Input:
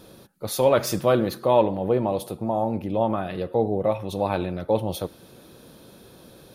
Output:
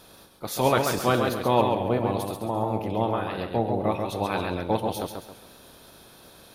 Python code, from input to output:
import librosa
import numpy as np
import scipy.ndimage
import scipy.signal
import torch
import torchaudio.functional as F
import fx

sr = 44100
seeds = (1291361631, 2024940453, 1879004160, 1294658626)

y = fx.spec_clip(x, sr, under_db=13)
y = fx.echo_warbled(y, sr, ms=135, feedback_pct=36, rate_hz=2.8, cents=65, wet_db=-5.0)
y = F.gain(torch.from_numpy(y), -3.0).numpy()